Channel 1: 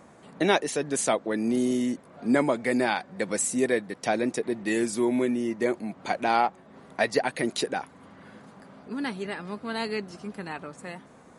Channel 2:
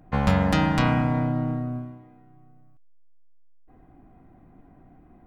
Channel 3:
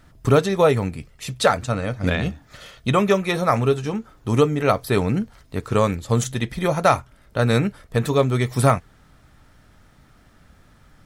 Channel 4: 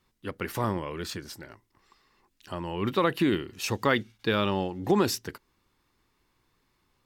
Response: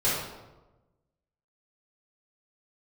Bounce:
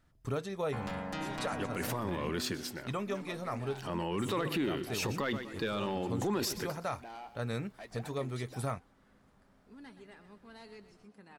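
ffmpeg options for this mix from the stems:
-filter_complex "[0:a]asoftclip=type=tanh:threshold=-22dB,adelay=800,volume=-19.5dB,asplit=2[a][b];[b]volume=-12dB[c];[1:a]equalizer=f=65:t=o:w=2.7:g=-13.5,asoftclip=type=tanh:threshold=-17dB,adelay=600,volume=-12.5dB[d];[2:a]volume=-17.5dB[e];[3:a]highpass=100,asoftclip=type=tanh:threshold=-14dB,adelay=1350,volume=1.5dB,asplit=2[f][g];[g]volume=-19dB[h];[c][h]amix=inputs=2:normalize=0,aecho=0:1:123|246|369|492|615:1|0.39|0.152|0.0593|0.0231[i];[a][d][e][f][i]amix=inputs=5:normalize=0,alimiter=level_in=1dB:limit=-24dB:level=0:latency=1:release=18,volume=-1dB"

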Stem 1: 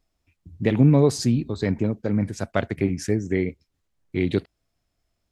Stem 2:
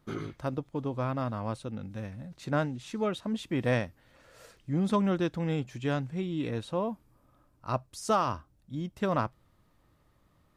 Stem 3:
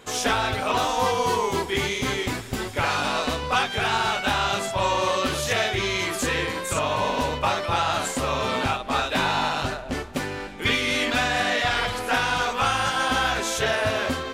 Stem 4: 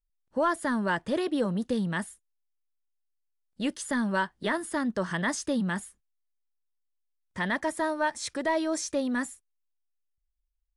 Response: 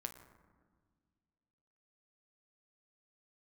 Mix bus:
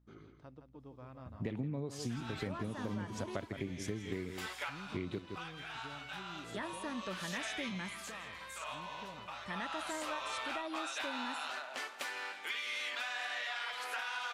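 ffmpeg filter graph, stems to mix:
-filter_complex "[0:a]adelay=800,volume=-8dB,asplit=2[a][b];[b]volume=-12.5dB[c];[1:a]lowpass=6.1k,alimiter=limit=-23dB:level=0:latency=1:release=378,aeval=exprs='val(0)+0.00355*(sin(2*PI*60*n/s)+sin(2*PI*2*60*n/s)/2+sin(2*PI*3*60*n/s)/3+sin(2*PI*4*60*n/s)/4+sin(2*PI*5*60*n/s)/5)':c=same,volume=-19.5dB,asplit=3[d][e][f];[e]volume=-8.5dB[g];[2:a]highpass=1k,acompressor=threshold=-34dB:ratio=2.5,adynamicequalizer=threshold=0.00355:dfrequency=4800:dqfactor=0.7:tfrequency=4800:tqfactor=0.7:attack=5:release=100:ratio=0.375:range=3:mode=cutabove:tftype=highshelf,adelay=1850,volume=-3dB,asplit=2[h][i];[i]volume=-22dB[j];[3:a]adelay=2100,volume=-14dB,asplit=3[k][l][m];[k]atrim=end=3.45,asetpts=PTS-STARTPTS,afade=t=out:st=3.446:d=0.004:c=hsin[n];[l]atrim=start=3.45:end=6.44,asetpts=PTS-STARTPTS,volume=0[o];[m]atrim=start=6.44,asetpts=PTS-STARTPTS,afade=t=in:d=0.004:c=hsin[p];[n][o][p]concat=n=3:v=0:a=1,asplit=2[q][r];[r]volume=-7.5dB[s];[f]apad=whole_len=713847[t];[h][t]sidechaincompress=threshold=-59dB:ratio=4:attack=12:release=831[u];[4:a]atrim=start_sample=2205[v];[s][v]afir=irnorm=-1:irlink=0[w];[c][g][j]amix=inputs=3:normalize=0,aecho=0:1:165:1[x];[a][d][u][q][w][x]amix=inputs=6:normalize=0,acompressor=threshold=-35dB:ratio=10"

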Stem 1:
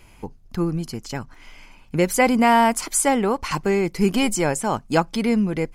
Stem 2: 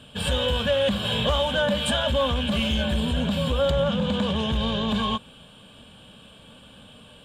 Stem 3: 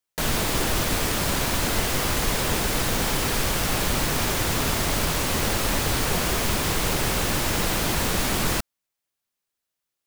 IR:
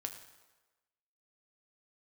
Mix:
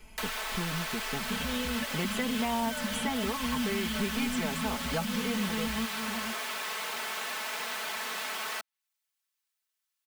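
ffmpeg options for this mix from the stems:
-filter_complex "[0:a]volume=-5.5dB,asplit=2[a][b];[1:a]alimiter=limit=-20dB:level=0:latency=1,equalizer=f=240:w=6.1:g=14.5,adelay=1150,volume=-3.5dB[c];[2:a]highpass=1.1k,volume=-3dB[d];[b]apad=whole_len=370199[e];[c][e]sidechaingate=range=-16dB:threshold=-52dB:ratio=16:detection=peak[f];[a][f][d]amix=inputs=3:normalize=0,aecho=1:1:4.6:0.9,acrossover=split=340|850|3800[g][h][i][j];[g]acompressor=threshold=-35dB:ratio=4[k];[h]acompressor=threshold=-41dB:ratio=4[l];[i]acompressor=threshold=-36dB:ratio=4[m];[j]acompressor=threshold=-44dB:ratio=4[n];[k][l][m][n]amix=inputs=4:normalize=0"

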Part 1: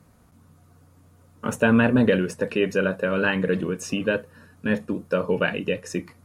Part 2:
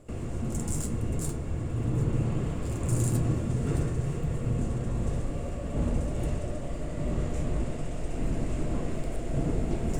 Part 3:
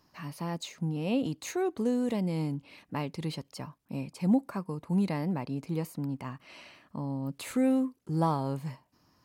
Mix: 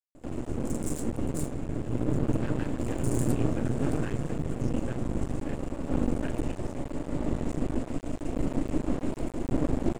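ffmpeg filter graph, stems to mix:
-filter_complex "[0:a]adelay=800,volume=-18dB[a];[1:a]equalizer=f=280:t=o:w=0.66:g=12,adelay=150,volume=0.5dB[b];[a][b]amix=inputs=2:normalize=0,aeval=exprs='max(val(0),0)':c=same"

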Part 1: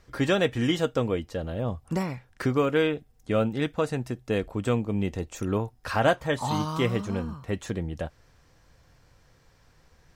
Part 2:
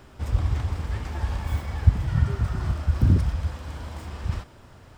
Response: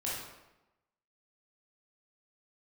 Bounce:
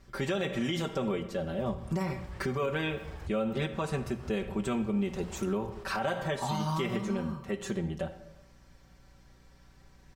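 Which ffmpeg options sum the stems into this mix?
-filter_complex "[0:a]bandreject=f=60:t=h:w=6,bandreject=f=120:t=h:w=6,bandreject=f=180:t=h:w=6,aecho=1:1:5.2:0.98,volume=-5dB,asplit=3[a][b][c];[b]volume=-12.5dB[d];[1:a]aecho=1:1:5.5:0.39,acompressor=threshold=-33dB:ratio=10,adelay=1400,volume=-6dB[e];[c]apad=whole_len=281257[f];[e][f]sidechaincompress=threshold=-35dB:ratio=8:attack=16:release=186[g];[2:a]atrim=start_sample=2205[h];[d][h]afir=irnorm=-1:irlink=0[i];[a][g][i]amix=inputs=3:normalize=0,aeval=exprs='val(0)+0.00112*(sin(2*PI*60*n/s)+sin(2*PI*2*60*n/s)/2+sin(2*PI*3*60*n/s)/3+sin(2*PI*4*60*n/s)/4+sin(2*PI*5*60*n/s)/5)':c=same,alimiter=limit=-22dB:level=0:latency=1:release=99"

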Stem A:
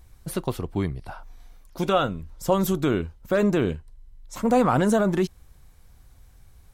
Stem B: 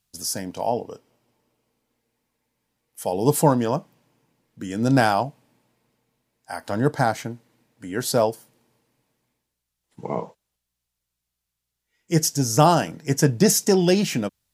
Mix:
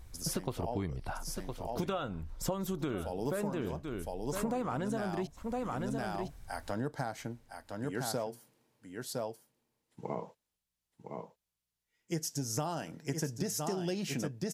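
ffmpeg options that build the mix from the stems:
-filter_complex "[0:a]highshelf=f=11k:g=-4.5,volume=0dB,asplit=2[a][b];[b]volume=-14.5dB[c];[1:a]volume=-8dB,asplit=2[d][e];[e]volume=-7.5dB[f];[c][f]amix=inputs=2:normalize=0,aecho=0:1:1011:1[g];[a][d][g]amix=inputs=3:normalize=0,acompressor=threshold=-31dB:ratio=12"

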